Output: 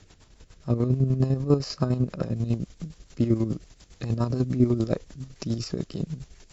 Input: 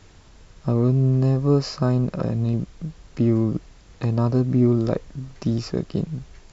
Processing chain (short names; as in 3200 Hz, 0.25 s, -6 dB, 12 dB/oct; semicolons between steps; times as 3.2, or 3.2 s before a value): high shelf 3900 Hz +5 dB, from 2.36 s +11 dB; chopper 10 Hz, depth 60%, duty 40%; rotary speaker horn 7 Hz